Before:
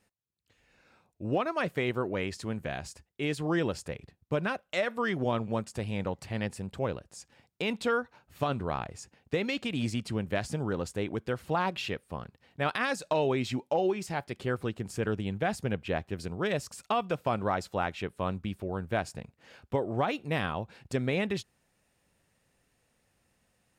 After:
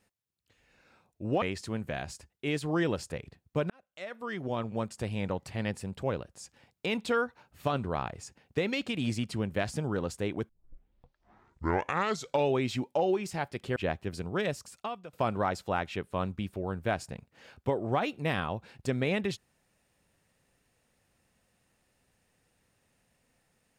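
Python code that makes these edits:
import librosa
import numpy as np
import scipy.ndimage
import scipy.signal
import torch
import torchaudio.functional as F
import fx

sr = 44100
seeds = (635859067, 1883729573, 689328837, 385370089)

y = fx.edit(x, sr, fx.cut(start_s=1.42, length_s=0.76),
    fx.fade_in_span(start_s=4.46, length_s=1.32),
    fx.tape_start(start_s=11.25, length_s=2.05),
    fx.cut(start_s=14.52, length_s=1.3),
    fx.fade_out_to(start_s=16.43, length_s=0.76, floor_db=-19.5), tone=tone)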